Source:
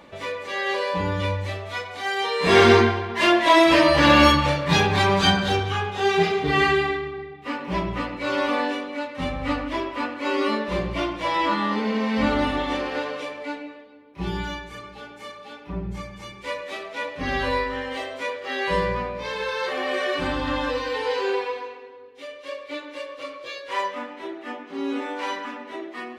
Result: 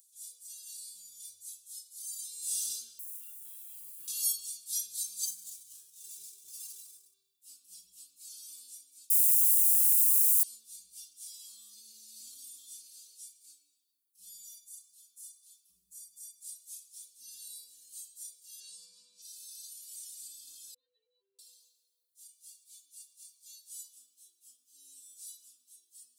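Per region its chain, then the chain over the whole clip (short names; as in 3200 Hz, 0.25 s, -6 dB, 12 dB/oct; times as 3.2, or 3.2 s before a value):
2.99–4.08 LPF 2100 Hz 24 dB/oct + requantised 10-bit, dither triangular + mismatched tape noise reduction encoder only
5.25–7.14 air absorption 260 m + running maximum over 3 samples
9.1–10.43 rippled Chebyshev high-pass 640 Hz, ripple 3 dB + requantised 6-bit, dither triangular
18.6–19.22 BPF 130–5700 Hz + fast leveller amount 70%
20.74–21.39 spectral contrast raised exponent 2.6 + rippled Chebyshev low-pass 4100 Hz, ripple 3 dB
whole clip: inverse Chebyshev high-pass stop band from 2200 Hz, stop band 70 dB; comb 4.3 ms, depth 61%; gain +13.5 dB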